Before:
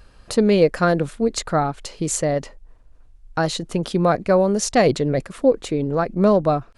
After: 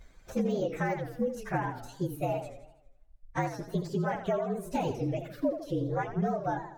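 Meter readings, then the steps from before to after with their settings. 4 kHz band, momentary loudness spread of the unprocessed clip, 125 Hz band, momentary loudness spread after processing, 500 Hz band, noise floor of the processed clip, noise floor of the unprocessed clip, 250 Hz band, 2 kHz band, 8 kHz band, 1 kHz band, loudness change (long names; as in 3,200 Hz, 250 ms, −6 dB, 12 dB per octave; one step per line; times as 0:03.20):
−19.5 dB, 8 LU, −9.5 dB, 6 LU, −14.0 dB, −59 dBFS, −50 dBFS, −11.5 dB, −10.5 dB, −23.5 dB, −10.0 dB, −12.5 dB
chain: partials spread apart or drawn together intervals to 114%
de-essing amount 95%
high-shelf EQ 9,300 Hz −6.5 dB
hum removal 115.7 Hz, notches 31
downward compressor 4 to 1, threshold −24 dBFS, peak gain reduction 10.5 dB
reverb reduction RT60 2 s
feedback echo with a swinging delay time 81 ms, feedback 53%, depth 188 cents, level −10 dB
level −2.5 dB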